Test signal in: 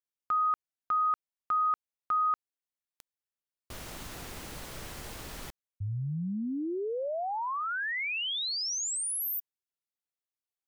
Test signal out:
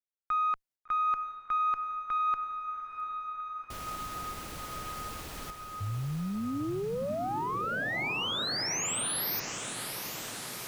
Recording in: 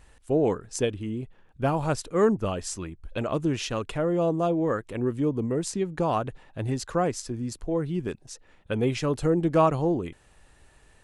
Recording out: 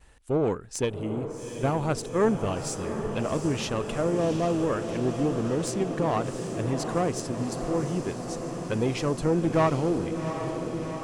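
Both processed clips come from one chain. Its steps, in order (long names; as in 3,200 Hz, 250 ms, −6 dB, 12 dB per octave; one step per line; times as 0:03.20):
one-sided soft clipper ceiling −20.5 dBFS
downward expander −55 dBFS, range −18 dB
feedback delay with all-pass diffusion 748 ms, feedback 76%, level −8 dB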